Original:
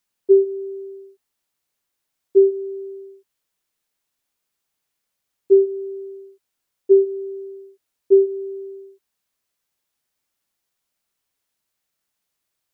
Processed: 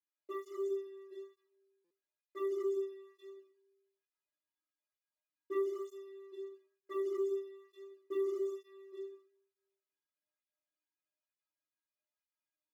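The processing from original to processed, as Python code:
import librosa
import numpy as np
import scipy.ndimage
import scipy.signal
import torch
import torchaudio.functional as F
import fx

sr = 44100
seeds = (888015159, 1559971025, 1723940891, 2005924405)

p1 = fx.bass_treble(x, sr, bass_db=-8, treble_db=-15)
p2 = p1 + fx.echo_multitap(p1, sr, ms=(60, 131, 153, 229, 354, 819), db=(-19.5, -19.0, -6.5, -3.5, -12.0, -17.0), dry=0)
p3 = fx.leveller(p2, sr, passes=2)
p4 = fx.low_shelf(p3, sr, hz=270.0, db=-7.5)
p5 = fx.stiff_resonator(p4, sr, f0_hz=300.0, decay_s=0.25, stiffness=0.008)
p6 = fx.room_shoebox(p5, sr, seeds[0], volume_m3=310.0, walls='furnished', distance_m=5.1)
p7 = fx.buffer_glitch(p6, sr, at_s=(1.84,), block=256, repeats=10)
p8 = fx.flanger_cancel(p7, sr, hz=1.1, depth_ms=1.7)
y = p8 * 10.0 ** (-3.5 / 20.0)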